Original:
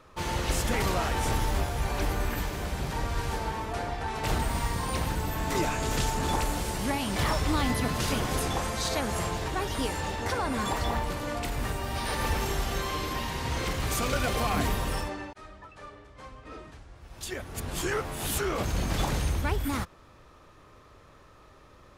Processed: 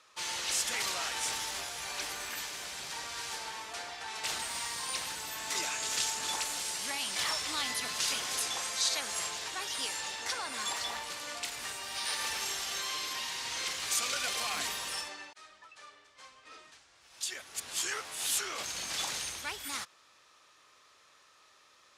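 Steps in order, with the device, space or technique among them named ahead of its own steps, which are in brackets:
piezo pickup straight into a mixer (low-pass filter 6,600 Hz 12 dB per octave; first difference)
level +8.5 dB

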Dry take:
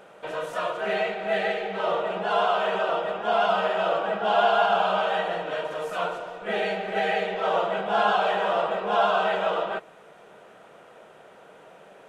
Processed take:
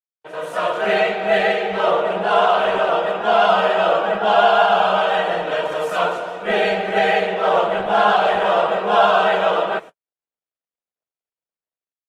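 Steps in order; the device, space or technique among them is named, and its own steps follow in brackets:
video call (high-pass filter 130 Hz 12 dB per octave; automatic gain control gain up to 9 dB; noise gate −32 dBFS, range −60 dB; Opus 24 kbit/s 48,000 Hz)

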